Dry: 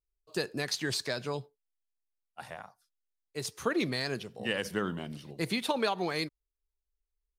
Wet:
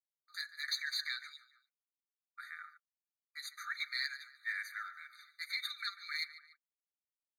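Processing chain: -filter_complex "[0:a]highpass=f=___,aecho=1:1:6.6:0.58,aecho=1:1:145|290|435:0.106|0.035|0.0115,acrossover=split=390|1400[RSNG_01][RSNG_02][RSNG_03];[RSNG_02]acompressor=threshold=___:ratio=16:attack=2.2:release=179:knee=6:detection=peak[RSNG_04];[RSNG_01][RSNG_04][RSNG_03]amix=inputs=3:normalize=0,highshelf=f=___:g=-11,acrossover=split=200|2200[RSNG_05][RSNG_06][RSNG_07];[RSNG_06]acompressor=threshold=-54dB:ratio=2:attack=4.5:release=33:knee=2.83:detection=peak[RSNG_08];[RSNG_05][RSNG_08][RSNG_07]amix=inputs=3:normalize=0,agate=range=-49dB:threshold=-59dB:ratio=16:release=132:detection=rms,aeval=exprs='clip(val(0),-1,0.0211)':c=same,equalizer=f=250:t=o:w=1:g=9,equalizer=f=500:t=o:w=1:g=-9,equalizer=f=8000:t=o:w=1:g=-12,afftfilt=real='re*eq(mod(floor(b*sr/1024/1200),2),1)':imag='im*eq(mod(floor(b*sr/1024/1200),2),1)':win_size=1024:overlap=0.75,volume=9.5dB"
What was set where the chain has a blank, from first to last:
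77, -45dB, 2500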